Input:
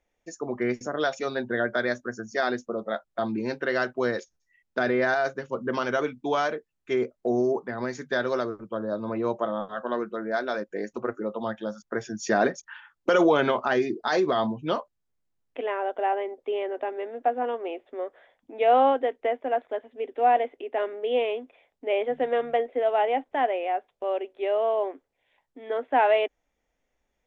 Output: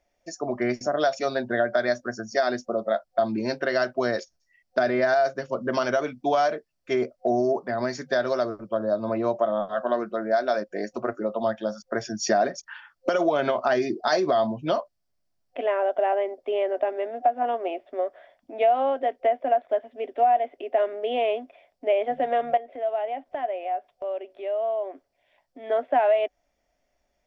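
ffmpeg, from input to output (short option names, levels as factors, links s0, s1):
-filter_complex "[0:a]asettb=1/sr,asplit=3[s0][s1][s2];[s0]atrim=end=22.574[s3];[s1]atrim=start=22.57:end=25.64,asetpts=PTS-STARTPTS,afade=t=in:d=0.004:c=qsin,afade=t=out:st=3.066:d=0.004:c=qsin,acompressor=threshold=0.00794:ratio=2:attack=3.2:release=140:knee=1:detection=peak[s4];[s2]atrim=start=25.636[s5];[s3][s4]acrossfade=d=0.004:c1=hsin:c2=qsin[s6];[s6][s5]acrossfade=d=0.004:c1=qsin:c2=hsin,superequalizer=8b=2.82:14b=2.24,acompressor=threshold=0.112:ratio=6,equalizer=f=510:t=o:w=0.23:g=-7.5,volume=1.26"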